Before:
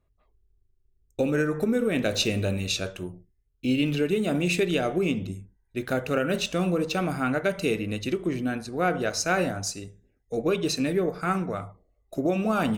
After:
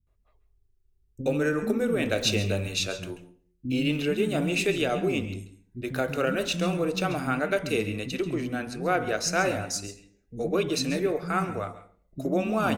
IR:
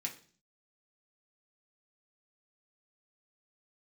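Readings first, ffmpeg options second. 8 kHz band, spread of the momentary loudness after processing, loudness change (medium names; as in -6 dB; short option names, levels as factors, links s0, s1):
0.0 dB, 11 LU, -1.0 dB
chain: -filter_complex "[0:a]acrossover=split=240[s0][s1];[s1]adelay=70[s2];[s0][s2]amix=inputs=2:normalize=0,asplit=2[s3][s4];[1:a]atrim=start_sample=2205,adelay=135[s5];[s4][s5]afir=irnorm=-1:irlink=0,volume=0.224[s6];[s3][s6]amix=inputs=2:normalize=0"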